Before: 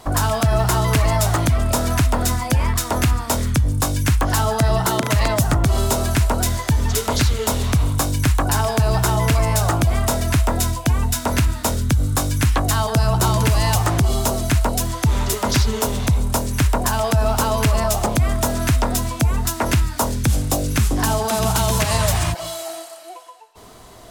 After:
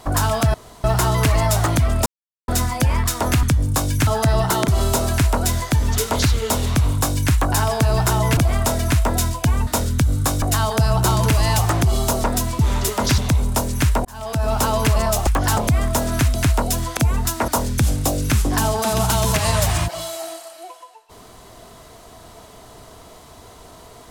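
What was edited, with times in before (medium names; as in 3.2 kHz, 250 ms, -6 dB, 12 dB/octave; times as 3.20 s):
0.54 s: insert room tone 0.30 s
1.76–2.18 s: mute
3.13–3.49 s: delete
4.13–4.43 s: move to 18.05 s
5.04–5.65 s: delete
9.34–9.79 s: delete
11.09–11.58 s: delete
12.33–12.59 s: delete
14.41–15.04 s: swap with 18.82–19.17 s
15.63–15.96 s: delete
16.83–17.38 s: fade in
19.68–19.94 s: delete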